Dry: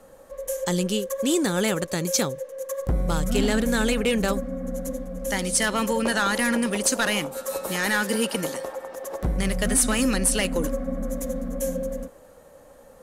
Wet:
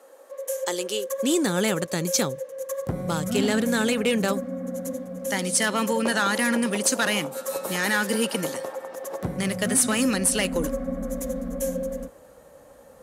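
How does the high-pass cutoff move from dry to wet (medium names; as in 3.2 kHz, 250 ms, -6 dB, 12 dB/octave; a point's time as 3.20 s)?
high-pass 24 dB/octave
0.99 s 330 Hz
1.43 s 97 Hz
9.81 s 97 Hz
10.61 s 40 Hz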